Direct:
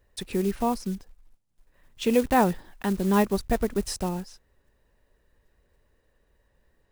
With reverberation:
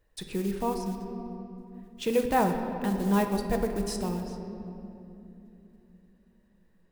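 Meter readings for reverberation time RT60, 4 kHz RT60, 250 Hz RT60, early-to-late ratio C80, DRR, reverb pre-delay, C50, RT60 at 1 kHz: 3.0 s, 1.7 s, 4.8 s, 7.5 dB, 4.5 dB, 6 ms, 6.0 dB, 2.5 s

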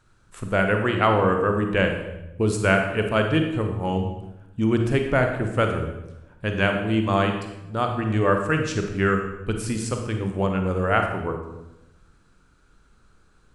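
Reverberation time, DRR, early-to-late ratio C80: 0.95 s, 4.0 dB, 8.0 dB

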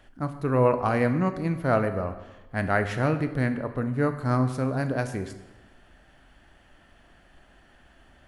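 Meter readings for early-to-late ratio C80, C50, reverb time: 12.5 dB, 11.0 dB, 1.1 s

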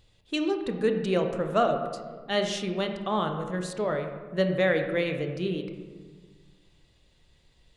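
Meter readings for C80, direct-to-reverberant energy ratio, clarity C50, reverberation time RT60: 8.5 dB, 5.0 dB, 7.0 dB, 1.5 s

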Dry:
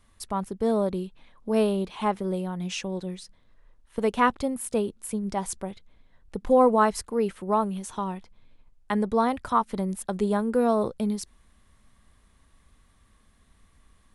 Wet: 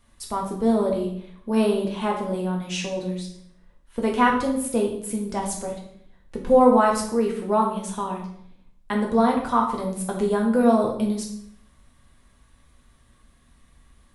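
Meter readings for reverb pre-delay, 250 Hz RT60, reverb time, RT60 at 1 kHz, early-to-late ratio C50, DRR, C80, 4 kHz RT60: 4 ms, 0.80 s, 0.65 s, 0.60 s, 5.5 dB, -1.0 dB, 9.5 dB, 0.55 s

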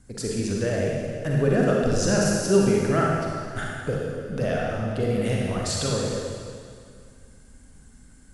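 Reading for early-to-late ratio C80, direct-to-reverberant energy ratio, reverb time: 0.0 dB, -3.5 dB, 2.2 s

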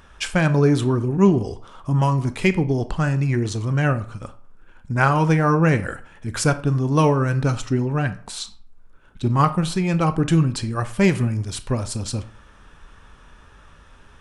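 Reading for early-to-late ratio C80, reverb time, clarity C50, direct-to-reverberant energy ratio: 19.0 dB, 0.50 s, 15.5 dB, 11.0 dB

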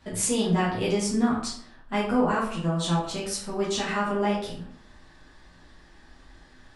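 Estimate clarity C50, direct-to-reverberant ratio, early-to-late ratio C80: 4.0 dB, -8.0 dB, 8.0 dB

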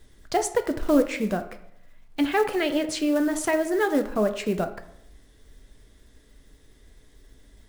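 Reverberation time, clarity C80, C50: 0.75 s, 15.0 dB, 12.0 dB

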